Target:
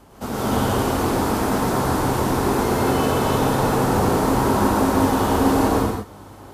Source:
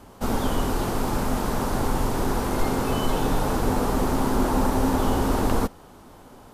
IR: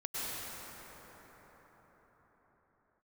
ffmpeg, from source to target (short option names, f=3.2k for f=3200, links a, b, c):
-filter_complex "[0:a]highpass=74,aeval=exprs='val(0)+0.00224*(sin(2*PI*50*n/s)+sin(2*PI*2*50*n/s)/2+sin(2*PI*3*50*n/s)/3+sin(2*PI*4*50*n/s)/4+sin(2*PI*5*50*n/s)/5)':c=same[a];[1:a]atrim=start_sample=2205,afade=t=out:st=0.42:d=0.01,atrim=end_sample=18963[b];[a][b]afir=irnorm=-1:irlink=0,volume=3dB"